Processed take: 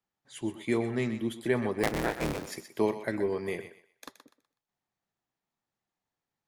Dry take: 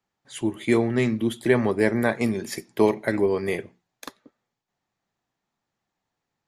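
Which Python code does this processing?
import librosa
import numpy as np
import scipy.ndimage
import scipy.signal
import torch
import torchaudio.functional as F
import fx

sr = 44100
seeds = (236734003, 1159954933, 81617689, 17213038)

y = fx.cycle_switch(x, sr, every=3, mode='inverted', at=(1.83, 2.47))
y = fx.echo_thinned(y, sr, ms=124, feedback_pct=29, hz=510.0, wet_db=-10.0)
y = F.gain(torch.from_numpy(y), -8.0).numpy()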